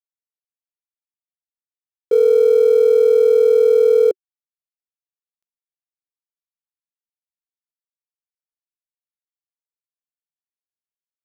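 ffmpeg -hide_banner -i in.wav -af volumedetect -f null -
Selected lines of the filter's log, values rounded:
mean_volume: -19.8 dB
max_volume: -6.4 dB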